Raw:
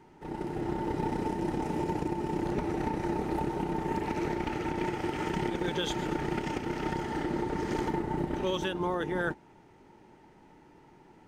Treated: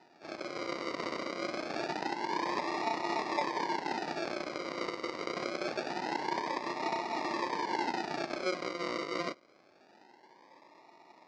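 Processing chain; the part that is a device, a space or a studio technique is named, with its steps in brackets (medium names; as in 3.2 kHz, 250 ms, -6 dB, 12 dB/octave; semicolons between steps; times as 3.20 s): circuit-bent sampling toy (decimation with a swept rate 40×, swing 60% 0.25 Hz; cabinet simulation 420–5300 Hz, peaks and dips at 450 Hz -4 dB, 950 Hz +9 dB, 1.4 kHz -6 dB, 2 kHz +4 dB, 3.2 kHz -8 dB, 4.8 kHz +5 dB)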